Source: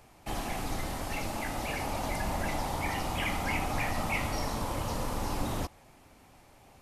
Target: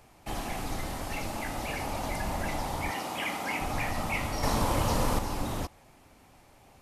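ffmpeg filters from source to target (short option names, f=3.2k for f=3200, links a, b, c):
-filter_complex "[0:a]asettb=1/sr,asplit=3[a][b][c];[a]atrim=end=2.914[d];[b]atrim=start=2.91:end=3.61,asetpts=PTS-STARTPTS,afade=t=in:d=0.004:c=qsin,afade=t=out:st=0.696:d=0.004:c=qsin,highpass=230[e];[c]atrim=start=3.606[f];[d][e]acrossfade=d=0.004:c1=hsin:c2=qsin[g];[g][f]acrossfade=d=0.004:c1=qsin:c2=hsin,asettb=1/sr,asplit=3[h][i][j];[h]atrim=end=4.434[k];[i]atrim=start=4.43:end=5.19,asetpts=PTS-STARTPTS,afade=t=in:d=0.004:c=qsin,afade=t=out:st=0.756:d=0.004:c=qsin,acontrast=62[l];[j]atrim=start=5.186[m];[k][l]acrossfade=d=0.004:c1=hsin:c2=qsin[n];[n][m]acrossfade=d=0.004:c1=qsin:c2=hsin"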